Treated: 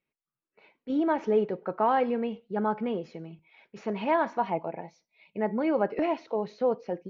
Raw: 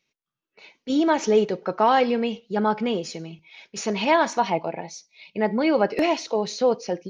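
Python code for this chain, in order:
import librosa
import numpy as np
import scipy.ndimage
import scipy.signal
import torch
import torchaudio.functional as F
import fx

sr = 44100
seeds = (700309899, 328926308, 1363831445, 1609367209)

y = scipy.signal.sosfilt(scipy.signal.butter(2, 1800.0, 'lowpass', fs=sr, output='sos'), x)
y = F.gain(torch.from_numpy(y), -5.5).numpy()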